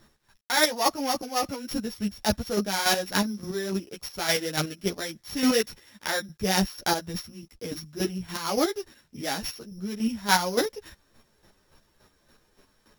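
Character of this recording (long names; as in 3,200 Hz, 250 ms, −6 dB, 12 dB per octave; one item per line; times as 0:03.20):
a buzz of ramps at a fixed pitch in blocks of 8 samples
chopped level 3.5 Hz, depth 60%, duty 25%
a quantiser's noise floor 12 bits, dither none
a shimmering, thickened sound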